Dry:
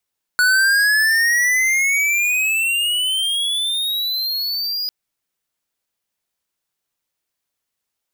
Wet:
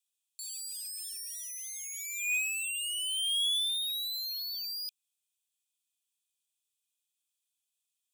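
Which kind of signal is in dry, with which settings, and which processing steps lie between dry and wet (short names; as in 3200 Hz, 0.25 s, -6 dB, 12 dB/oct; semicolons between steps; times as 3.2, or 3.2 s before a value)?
gliding synth tone square, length 4.50 s, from 1470 Hz, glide +21 st, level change -8.5 dB, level -14 dB
soft clip -28 dBFS; rippled Chebyshev high-pass 2400 Hz, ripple 9 dB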